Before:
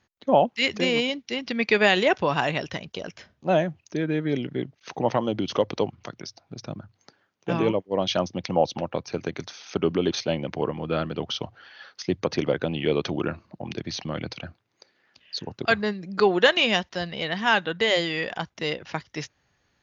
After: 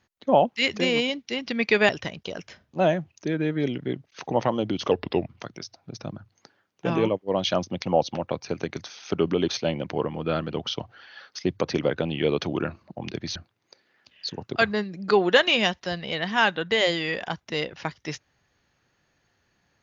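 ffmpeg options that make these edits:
ffmpeg -i in.wav -filter_complex "[0:a]asplit=5[link_01][link_02][link_03][link_04][link_05];[link_01]atrim=end=1.892[link_06];[link_02]atrim=start=2.578:end=5.604[link_07];[link_03]atrim=start=5.6:end=5.92,asetpts=PTS-STARTPTS,asetrate=37485,aresample=44100,atrim=end_sample=16602,asetpts=PTS-STARTPTS[link_08];[link_04]atrim=start=5.916:end=13.992[link_09];[link_05]atrim=start=14.448[link_10];[link_06][link_07]acrossfade=duration=0.004:curve1=hsin:curve2=hsin[link_11];[link_11][link_08]acrossfade=duration=0.004:curve1=hsin:curve2=hsin[link_12];[link_12][link_09]acrossfade=duration=0.004:curve1=hsin:curve2=hsin[link_13];[link_13][link_10]acrossfade=duration=0.004:curve1=hsin:curve2=hsin" out.wav

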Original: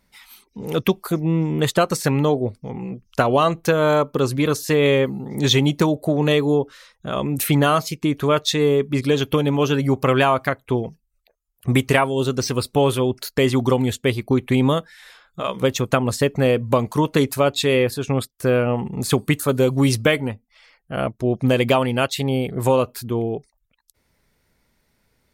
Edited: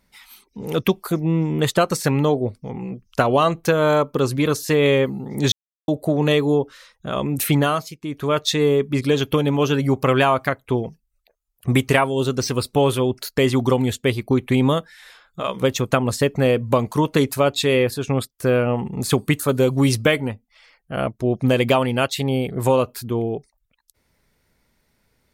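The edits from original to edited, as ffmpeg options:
ffmpeg -i in.wav -filter_complex "[0:a]asplit=5[link_01][link_02][link_03][link_04][link_05];[link_01]atrim=end=5.52,asetpts=PTS-STARTPTS,afade=type=out:start_time=5.516:duration=0.004:curve=hsin[link_06];[link_02]atrim=start=5.52:end=5.88,asetpts=PTS-STARTPTS,volume=0[link_07];[link_03]atrim=start=5.88:end=7.98,asetpts=PTS-STARTPTS,afade=type=in:duration=0.004:curve=hsin,afade=type=out:start_time=1.65:duration=0.45:silence=0.251189[link_08];[link_04]atrim=start=7.98:end=8,asetpts=PTS-STARTPTS,volume=-12dB[link_09];[link_05]atrim=start=8,asetpts=PTS-STARTPTS,afade=type=in:duration=0.45:silence=0.251189[link_10];[link_06][link_07][link_08][link_09][link_10]concat=n=5:v=0:a=1" out.wav

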